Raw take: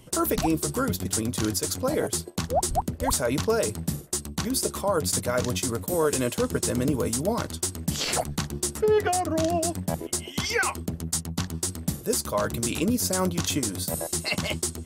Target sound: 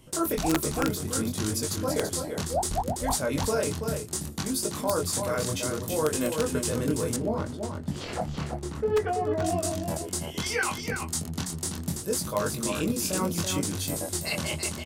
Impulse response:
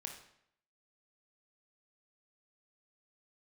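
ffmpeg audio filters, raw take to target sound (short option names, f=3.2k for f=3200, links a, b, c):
-filter_complex "[0:a]flanger=delay=19.5:depth=7:speed=0.65,aecho=1:1:333:0.501,aeval=exprs='(mod(5.62*val(0)+1,2)-1)/5.62':c=same,asettb=1/sr,asplit=3[a][b][c];[a]atrim=end=7.164[d];[b]atrim=start=7.16:end=9.45,asetpts=PTS-STARTPTS,afade=t=in:d=0.004:c=qsin,afade=t=out:st=2.286:d=0.004:c=qsin,lowpass=f=1.4k:p=1[e];[c]atrim=start=9.446[f];[d][e]acrossfade=d=0.004:c1=hsin:c2=qsin[g];[g][f]acrossfade=d=0.004:c1=qsin:c2=hsin"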